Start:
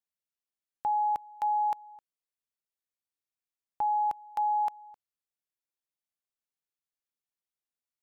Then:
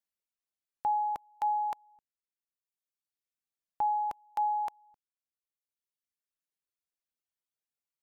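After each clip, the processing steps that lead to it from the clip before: reverb removal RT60 1.6 s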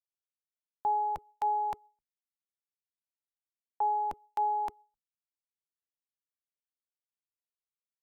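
octave divider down 1 oct, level +3 dB; gate with hold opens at -54 dBFS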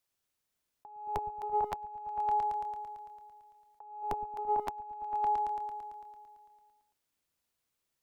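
delay with an opening low-pass 112 ms, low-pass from 200 Hz, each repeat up 1 oct, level 0 dB; compressor with a negative ratio -39 dBFS, ratio -0.5; trim +5.5 dB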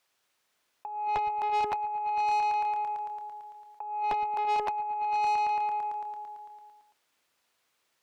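overdrive pedal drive 21 dB, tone 3 kHz, clips at -21.5 dBFS

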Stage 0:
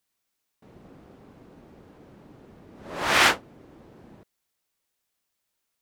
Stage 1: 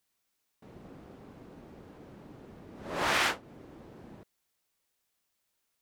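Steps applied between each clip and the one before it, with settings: compression 4:1, threshold -26 dBFS, peak gain reduction 10.5 dB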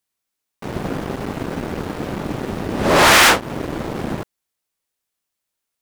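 peaking EQ 9.8 kHz +2 dB; waveshaping leveller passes 5; trim +8 dB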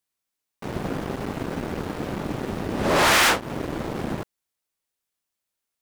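compression 1.5:1, threshold -19 dBFS, peak gain reduction 3.5 dB; trim -3.5 dB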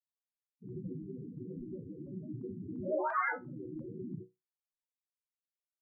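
loudest bins only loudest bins 4; chord resonator B2 major, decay 0.2 s; LFO low-pass saw up 2.9 Hz 1–4 kHz; trim +4 dB

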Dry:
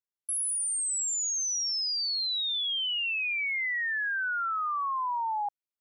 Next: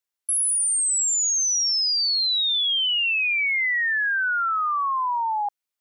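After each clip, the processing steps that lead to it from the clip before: bass shelf 480 Hz -9.5 dB; trim +8 dB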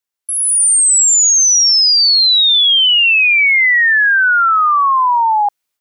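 level rider gain up to 10 dB; trim +2 dB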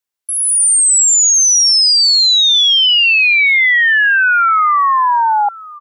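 delay 1049 ms -20.5 dB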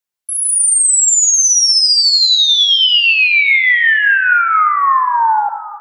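simulated room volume 2100 m³, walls mixed, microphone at 0.94 m; trim -1.5 dB

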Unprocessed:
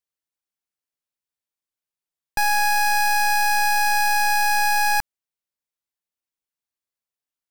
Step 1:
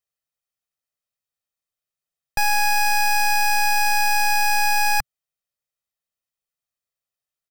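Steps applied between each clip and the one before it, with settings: peaking EQ 130 Hz +3 dB 0.68 oct; comb 1.6 ms, depth 49%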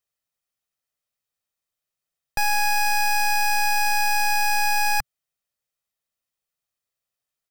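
peak limiter -19.5 dBFS, peak gain reduction 5 dB; trim +2.5 dB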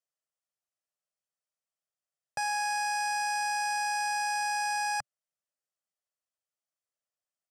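cabinet simulation 150–9700 Hz, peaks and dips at 230 Hz -10 dB, 360 Hz -8 dB, 600 Hz +5 dB, 2.3 kHz -7 dB, 3.8 kHz -9 dB; trim -7 dB

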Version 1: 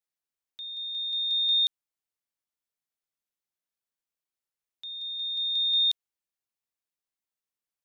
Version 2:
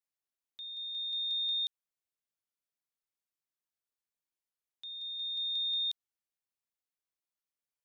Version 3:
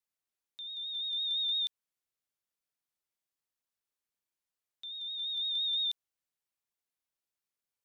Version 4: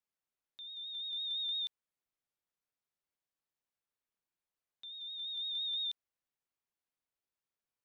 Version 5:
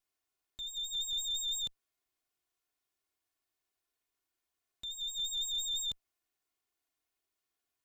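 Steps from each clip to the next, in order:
compression, threshold -26 dBFS, peak gain reduction 4.5 dB; trim -5 dB
vibrato 5.9 Hz 46 cents; trim +1 dB
treble shelf 3.7 kHz -10 dB
comb filter that takes the minimum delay 2.8 ms; peak limiter -37 dBFS, peak gain reduction 6.5 dB; trim +7 dB

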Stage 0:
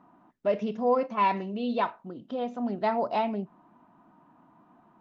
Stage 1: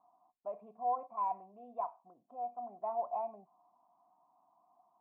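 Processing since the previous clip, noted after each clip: cascade formant filter a; trim -1 dB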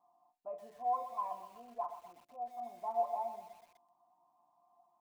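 chord resonator A#2 major, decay 0.2 s; bit-crushed delay 124 ms, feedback 55%, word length 11-bit, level -10.5 dB; trim +9.5 dB

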